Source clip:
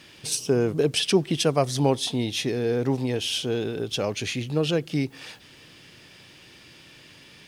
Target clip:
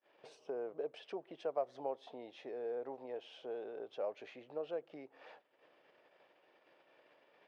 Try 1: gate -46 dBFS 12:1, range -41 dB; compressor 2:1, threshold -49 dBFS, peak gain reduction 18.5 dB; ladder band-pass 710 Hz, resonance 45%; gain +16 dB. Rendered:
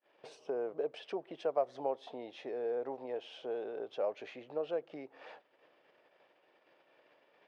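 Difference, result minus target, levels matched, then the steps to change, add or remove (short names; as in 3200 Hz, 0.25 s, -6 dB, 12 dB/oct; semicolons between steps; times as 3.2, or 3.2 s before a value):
compressor: peak gain reduction -4.5 dB
change: compressor 2:1, threshold -58.5 dBFS, peak gain reduction 23.5 dB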